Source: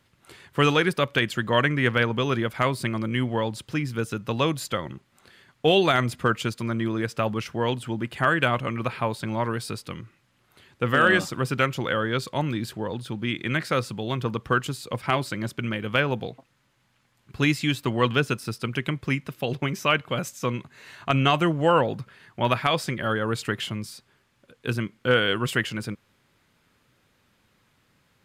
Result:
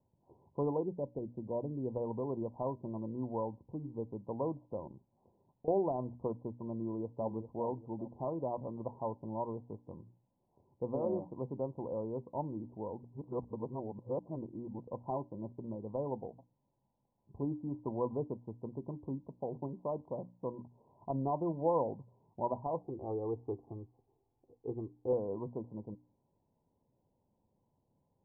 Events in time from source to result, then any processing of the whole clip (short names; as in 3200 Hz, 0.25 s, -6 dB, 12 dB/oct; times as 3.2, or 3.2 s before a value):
0.83–1.96 running mean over 35 samples
4.91–5.68 compressor, threshold -37 dBFS
6.81–7.32 echo throw 0.4 s, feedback 40%, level -11 dB
13.03–14.87 reverse
22.81–25.13 comb 2.6 ms, depth 78%
whole clip: Chebyshev low-pass 1000 Hz, order 8; notches 60/120/180/240/300 Hz; dynamic EQ 140 Hz, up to -6 dB, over -42 dBFS, Q 1.2; gain -9 dB